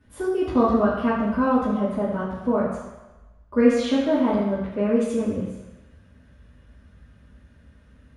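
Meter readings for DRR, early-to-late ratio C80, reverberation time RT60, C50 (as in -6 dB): -10.5 dB, 4.0 dB, 1.1 s, 2.0 dB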